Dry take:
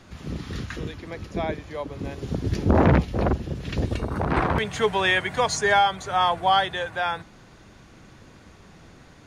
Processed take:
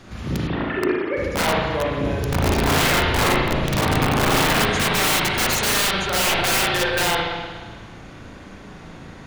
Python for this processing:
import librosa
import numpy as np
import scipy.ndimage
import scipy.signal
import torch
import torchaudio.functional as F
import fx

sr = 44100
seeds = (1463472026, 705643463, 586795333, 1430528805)

y = fx.sine_speech(x, sr, at=(0.47, 1.17))
y = (np.mod(10.0 ** (21.5 / 20.0) * y + 1.0, 2.0) - 1.0) / 10.0 ** (21.5 / 20.0)
y = fx.rev_spring(y, sr, rt60_s=1.5, pass_ms=(36, 58), chirp_ms=25, drr_db=-3.5)
y = F.gain(torch.from_numpy(y), 4.5).numpy()